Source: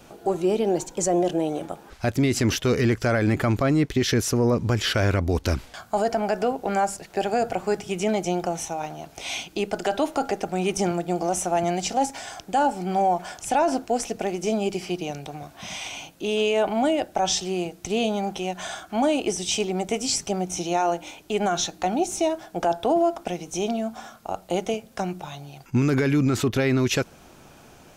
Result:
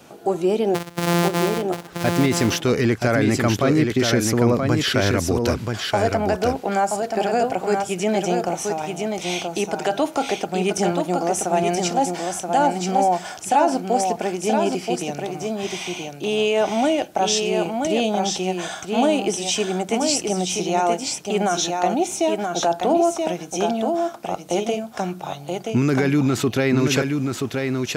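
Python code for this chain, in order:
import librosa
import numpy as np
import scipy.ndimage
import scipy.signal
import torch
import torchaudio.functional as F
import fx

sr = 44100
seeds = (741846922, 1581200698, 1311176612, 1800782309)

y = fx.sample_sort(x, sr, block=256, at=(0.74, 1.61), fade=0.02)
y = scipy.signal.sosfilt(scipy.signal.butter(2, 110.0, 'highpass', fs=sr, output='sos'), y)
y = y + 10.0 ** (-4.5 / 20.0) * np.pad(y, (int(978 * sr / 1000.0), 0))[:len(y)]
y = y * 10.0 ** (2.5 / 20.0)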